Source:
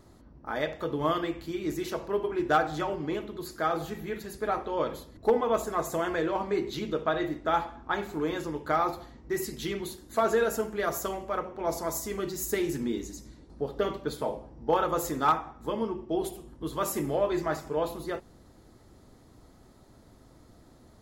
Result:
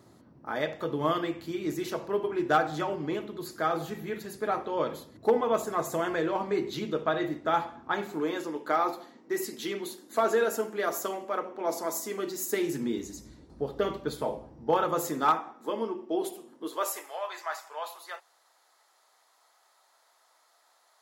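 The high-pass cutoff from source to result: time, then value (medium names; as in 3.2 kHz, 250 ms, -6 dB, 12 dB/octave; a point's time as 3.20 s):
high-pass 24 dB/octave
7.85 s 100 Hz
8.37 s 220 Hz
12.51 s 220 Hz
13.21 s 58 Hz
14.38 s 58 Hz
15.57 s 240 Hz
16.58 s 240 Hz
17.11 s 780 Hz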